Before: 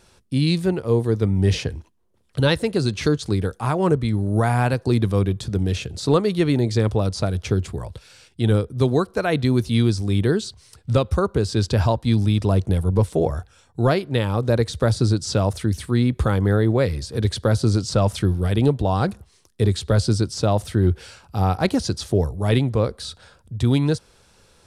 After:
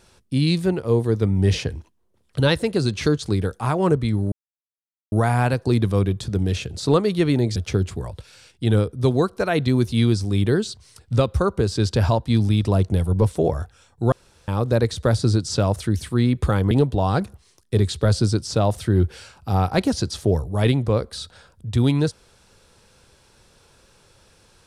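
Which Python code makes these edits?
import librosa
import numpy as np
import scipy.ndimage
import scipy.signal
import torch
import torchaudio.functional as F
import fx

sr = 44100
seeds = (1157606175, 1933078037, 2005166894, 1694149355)

y = fx.edit(x, sr, fx.insert_silence(at_s=4.32, length_s=0.8),
    fx.cut(start_s=6.76, length_s=0.57),
    fx.room_tone_fill(start_s=13.89, length_s=0.36),
    fx.cut(start_s=16.48, length_s=2.1), tone=tone)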